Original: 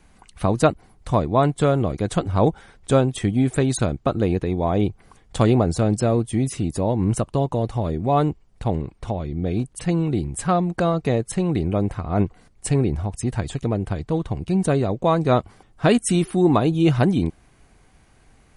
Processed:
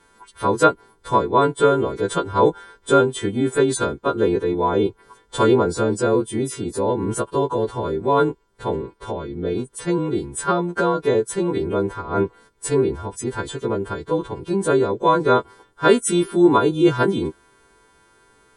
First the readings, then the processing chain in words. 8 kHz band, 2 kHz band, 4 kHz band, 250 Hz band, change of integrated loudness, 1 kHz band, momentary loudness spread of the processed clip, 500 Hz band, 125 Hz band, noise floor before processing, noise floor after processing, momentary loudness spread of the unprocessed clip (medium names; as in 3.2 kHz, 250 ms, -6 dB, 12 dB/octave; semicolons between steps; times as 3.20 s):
+2.0 dB, +5.5 dB, +3.0 dB, -0.5 dB, +1.0 dB, +4.0 dB, 10 LU, +4.0 dB, -7.0 dB, -55 dBFS, -57 dBFS, 8 LU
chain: partials quantised in pitch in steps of 2 st; small resonant body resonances 420/990/1400/3300 Hz, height 17 dB, ringing for 20 ms; trim -8 dB